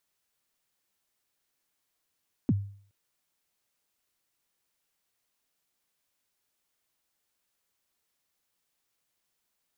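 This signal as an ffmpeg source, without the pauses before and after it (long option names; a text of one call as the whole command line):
ffmpeg -f lavfi -i "aevalsrc='0.126*pow(10,-3*t/0.51)*sin(2*PI*(310*0.038/log(100/310)*(exp(log(100/310)*min(t,0.038)/0.038)-1)+100*max(t-0.038,0)))':duration=0.42:sample_rate=44100" out.wav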